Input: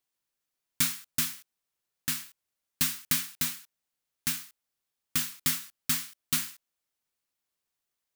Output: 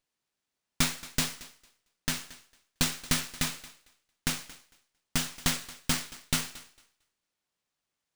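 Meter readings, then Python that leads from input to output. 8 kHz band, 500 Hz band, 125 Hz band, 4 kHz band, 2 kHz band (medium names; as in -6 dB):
-1.0 dB, no reading, +6.0 dB, +2.0 dB, +2.5 dB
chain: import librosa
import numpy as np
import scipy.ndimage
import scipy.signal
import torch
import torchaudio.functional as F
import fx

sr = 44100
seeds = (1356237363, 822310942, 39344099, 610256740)

y = fx.peak_eq(x, sr, hz=190.0, db=4.5, octaves=1.7)
y = fx.echo_thinned(y, sr, ms=226, feedback_pct=18, hz=420.0, wet_db=-18.0)
y = fx.running_max(y, sr, window=3)
y = y * librosa.db_to_amplitude(1.0)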